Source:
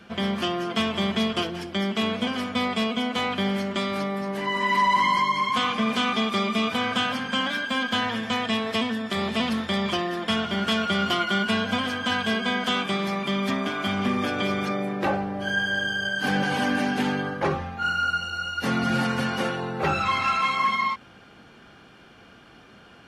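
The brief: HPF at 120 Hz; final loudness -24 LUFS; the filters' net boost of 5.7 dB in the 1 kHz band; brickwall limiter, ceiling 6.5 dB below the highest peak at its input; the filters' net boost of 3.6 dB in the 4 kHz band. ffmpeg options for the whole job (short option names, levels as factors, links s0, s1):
-af "highpass=120,equalizer=f=1000:t=o:g=6.5,equalizer=f=4000:t=o:g=4.5,volume=0.841,alimiter=limit=0.2:level=0:latency=1"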